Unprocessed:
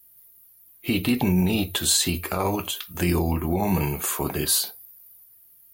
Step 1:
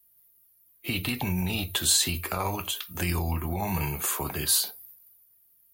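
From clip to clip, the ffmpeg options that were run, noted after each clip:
-filter_complex "[0:a]agate=range=-7dB:threshold=-48dB:ratio=16:detection=peak,acrossover=split=140|720|2800[a][b][c][d];[b]acompressor=threshold=-34dB:ratio=6[e];[a][e][c][d]amix=inputs=4:normalize=0,volume=-1.5dB"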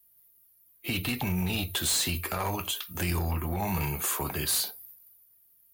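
-af "volume=24dB,asoftclip=hard,volume=-24dB"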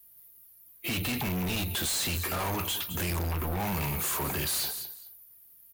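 -af "aecho=1:1:212|424:0.112|0.0213,asoftclip=type=hard:threshold=-35.5dB,volume=6.5dB"

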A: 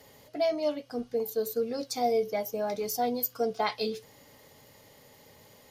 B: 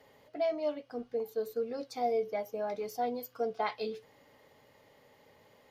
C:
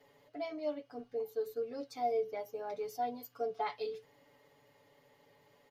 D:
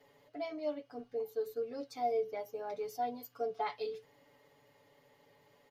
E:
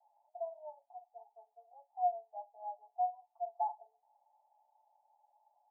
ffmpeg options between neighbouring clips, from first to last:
-af "bass=f=250:g=-6,treble=f=4k:g=-13,volume=-3.5dB"
-af "aecho=1:1:7:0.84,volume=-6.5dB"
-af anull
-af "asuperpass=centerf=780:order=8:qfactor=3,volume=2.5dB"

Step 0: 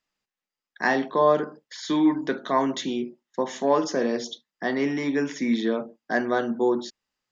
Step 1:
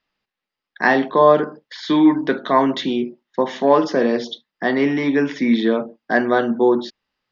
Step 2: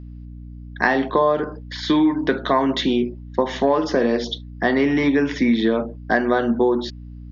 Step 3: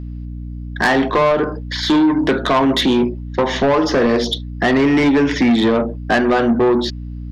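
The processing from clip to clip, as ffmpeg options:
-af "lowpass=f=4.6k:w=0.5412,lowpass=f=4.6k:w=1.3066,volume=7dB"
-af "aeval=exprs='val(0)+0.0126*(sin(2*PI*60*n/s)+sin(2*PI*2*60*n/s)/2+sin(2*PI*3*60*n/s)/3+sin(2*PI*4*60*n/s)/4+sin(2*PI*5*60*n/s)/5)':c=same,acompressor=threshold=-17dB:ratio=6,volume=3dB"
-af "asoftclip=type=tanh:threshold=-18dB,volume=8.5dB"

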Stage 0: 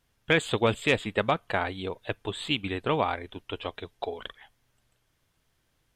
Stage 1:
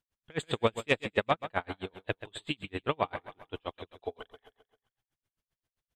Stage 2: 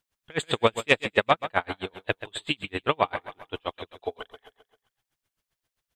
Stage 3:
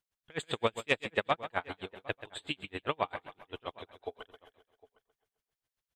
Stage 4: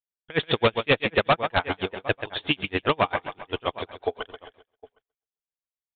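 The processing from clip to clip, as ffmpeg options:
-filter_complex "[0:a]agate=range=-11dB:threshold=-57dB:ratio=16:detection=peak,asplit=2[a][b];[b]aecho=0:1:132|264|396|528|660:0.251|0.123|0.0603|0.0296|0.0145[c];[a][c]amix=inputs=2:normalize=0,aeval=exprs='val(0)*pow(10,-37*(0.5-0.5*cos(2*PI*7.6*n/s))/20)':c=same"
-af "lowshelf=f=440:g=-6,volume=8dB"
-filter_complex "[0:a]asplit=2[a][b];[b]adelay=758,volume=-21dB,highshelf=f=4k:g=-17.1[c];[a][c]amix=inputs=2:normalize=0,volume=-8.5dB"
-af "agate=range=-33dB:threshold=-59dB:ratio=3:detection=peak,aresample=8000,aeval=exprs='0.251*sin(PI/2*3.16*val(0)/0.251)':c=same,aresample=44100"

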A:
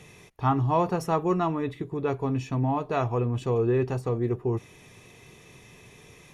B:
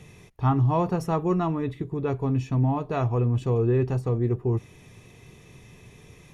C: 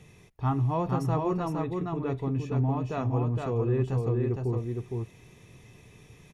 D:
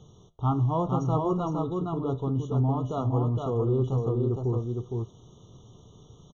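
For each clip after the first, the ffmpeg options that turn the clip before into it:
-af "lowshelf=f=230:g=9.5,volume=-2.5dB"
-af "aecho=1:1:462:0.668,volume=-5dB"
-af "flanger=delay=8.8:depth=4.1:regen=-85:speed=0.39:shape=sinusoidal,aresample=16000,aresample=44100,afftfilt=real='re*eq(mod(floor(b*sr/1024/1400),2),0)':imag='im*eq(mod(floor(b*sr/1024/1400),2),0)':win_size=1024:overlap=0.75,volume=6dB"

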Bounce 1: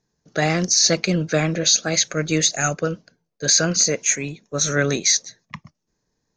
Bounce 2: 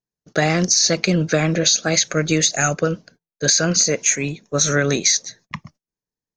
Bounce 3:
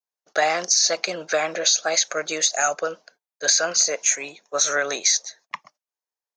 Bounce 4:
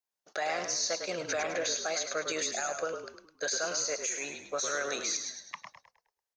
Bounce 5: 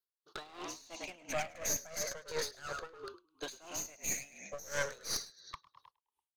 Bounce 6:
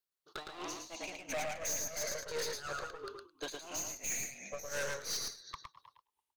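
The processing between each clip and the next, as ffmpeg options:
-af "agate=range=-24dB:threshold=-52dB:ratio=16:detection=peak,acompressor=threshold=-18dB:ratio=6,volume=5dB"
-af "adynamicequalizer=threshold=0.02:dfrequency=2200:dqfactor=1.1:tfrequency=2200:tqfactor=1.1:attack=5:release=100:ratio=0.375:range=2:mode=cutabove:tftype=bell,highpass=f=730:t=q:w=1.6,volume=-2dB"
-filter_complex "[0:a]acompressor=threshold=-31dB:ratio=2.5,alimiter=limit=-23dB:level=0:latency=1:release=49,asplit=2[a][b];[b]asplit=5[c][d][e][f][g];[c]adelay=104,afreqshift=-43,volume=-7dB[h];[d]adelay=208,afreqshift=-86,volume=-14.7dB[i];[e]adelay=312,afreqshift=-129,volume=-22.5dB[j];[f]adelay=416,afreqshift=-172,volume=-30.2dB[k];[g]adelay=520,afreqshift=-215,volume=-38dB[l];[h][i][j][k][l]amix=inputs=5:normalize=0[m];[a][m]amix=inputs=2:normalize=0"
-af "afftfilt=real='re*pow(10,17/40*sin(2*PI*(0.6*log(max(b,1)*sr/1024/100)/log(2)-(-0.37)*(pts-256)/sr)))':imag='im*pow(10,17/40*sin(2*PI*(0.6*log(max(b,1)*sr/1024/100)/log(2)-(-0.37)*(pts-256)/sr)))':win_size=1024:overlap=0.75,aeval=exprs='clip(val(0),-1,0.0158)':c=same,aeval=exprs='val(0)*pow(10,-19*(0.5-0.5*cos(2*PI*2.9*n/s))/20)':c=same,volume=-3dB"
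-af "aecho=1:1:112:0.531,volume=32dB,asoftclip=hard,volume=-32dB,volume=1dB"

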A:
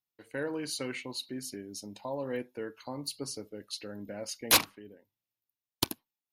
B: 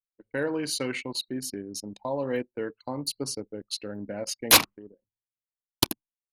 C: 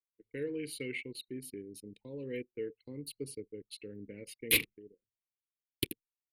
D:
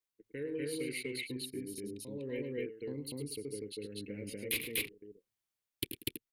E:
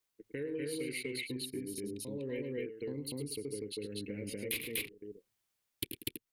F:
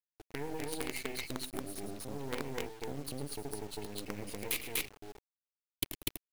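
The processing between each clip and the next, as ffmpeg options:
-af "anlmdn=0.0631,volume=6dB"
-af "firequalizer=gain_entry='entry(140,0);entry(210,-4);entry(450,3);entry(650,-27);entry(1400,-21);entry(2100,4);entry(3400,-2);entry(6000,-21);entry(9500,-2)':delay=0.05:min_phase=1,volume=-7.5dB"
-af "tremolo=f=1.7:d=0.48,acompressor=threshold=-44dB:ratio=2,aecho=1:1:105|244.9:0.316|1,volume=4dB"
-af "acompressor=threshold=-47dB:ratio=2,volume=6.5dB"
-af "acrusher=bits=6:dc=4:mix=0:aa=0.000001,volume=2.5dB"

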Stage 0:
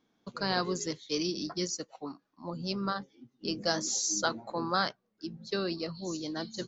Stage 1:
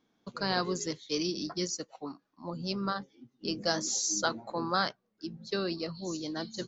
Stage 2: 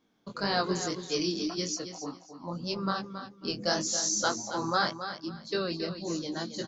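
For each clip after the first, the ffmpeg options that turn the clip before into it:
-af anull
-af "flanger=delay=18:depth=6.3:speed=1.8,aecho=1:1:273|546|819:0.316|0.0727|0.0167,volume=4.5dB"

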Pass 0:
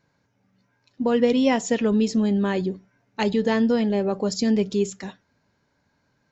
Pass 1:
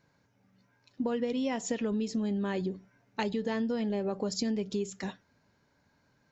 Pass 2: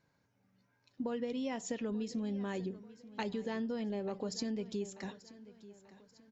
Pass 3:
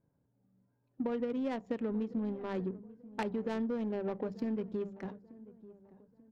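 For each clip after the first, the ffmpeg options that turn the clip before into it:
-af "acompressor=threshold=-28dB:ratio=6,volume=-1dB"
-af "aecho=1:1:887|1774|2661:0.133|0.056|0.0235,volume=-6dB"
-af "adynamicsmooth=sensitivity=5.5:basefreq=600,bandreject=f=50:t=h:w=6,bandreject=f=100:t=h:w=6,bandreject=f=150:t=h:w=6,bandreject=f=200:t=h:w=6,volume=3dB"

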